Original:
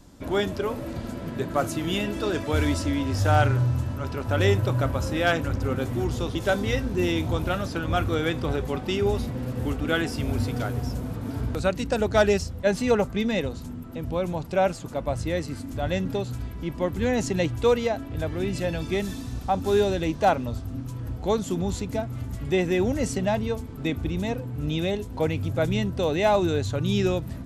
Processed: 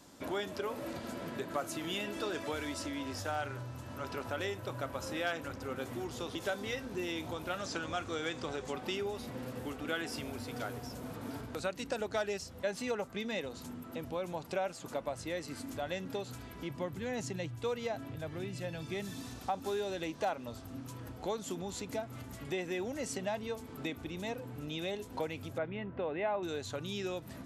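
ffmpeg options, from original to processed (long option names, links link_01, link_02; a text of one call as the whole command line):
ffmpeg -i in.wav -filter_complex "[0:a]asettb=1/sr,asplit=3[link_01][link_02][link_03];[link_01]atrim=end=7.584[link_04];[link_02]atrim=start=7.58:end=8.73,asetpts=PTS-STARTPTS,afade=type=in:duration=0.004:curve=qsin,afade=type=out:start_time=1.146:duration=0.004:curve=qsin,lowpass=frequency=7100:width_type=q:width=2.2[link_05];[link_03]atrim=start=8.726[link_06];[link_04][link_05]acrossfade=duration=0.004:curve1=hsin:curve2=qsin[link_07];[link_07][link_06]acrossfade=duration=0.004:curve1=qsin:curve2=hsin,asettb=1/sr,asplit=3[link_08][link_09][link_10];[link_08]atrim=end=16.704[link_11];[link_09]atrim=start=16.7:end=19.22,asetpts=PTS-STARTPTS,afade=type=in:duration=0.004:curve=qsin,afade=type=out:start_time=2.516:duration=0.004:curve=qsin,equalizer=frequency=130:width_type=o:width=0.77:gain=14[link_12];[link_10]atrim=start=19.216[link_13];[link_11][link_12]acrossfade=duration=0.004:curve1=hsin:curve2=qsin[link_14];[link_14][link_13]acrossfade=duration=0.004:curve1=qsin:curve2=hsin,asettb=1/sr,asplit=3[link_15][link_16][link_17];[link_15]atrim=end=25.584[link_18];[link_16]atrim=start=25.58:end=26.43,asetpts=PTS-STARTPTS,afade=type=in:duration=0.004:curve=qsin,afade=type=out:start_time=0.846:duration=0.004:curve=qsin,lowpass=frequency=2400:width=0.5412,lowpass=frequency=2400:width=1.3066[link_19];[link_17]atrim=start=26.426[link_20];[link_18][link_19]acrossfade=duration=0.004:curve1=hsin:curve2=qsin[link_21];[link_21][link_20]acrossfade=duration=0.004:curve1=qsin:curve2=hsin,acompressor=threshold=-31dB:ratio=4,highpass=frequency=460:poles=1" out.wav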